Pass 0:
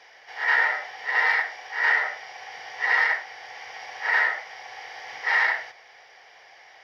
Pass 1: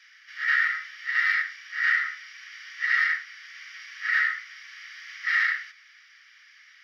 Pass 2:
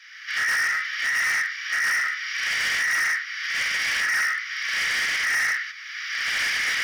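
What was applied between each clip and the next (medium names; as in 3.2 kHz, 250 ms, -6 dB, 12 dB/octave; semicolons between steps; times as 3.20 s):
steep high-pass 1.2 kHz 96 dB/octave; trim -1.5 dB
recorder AGC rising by 33 dB/s; hard clipper -27 dBFS, distortion -7 dB; trim +6 dB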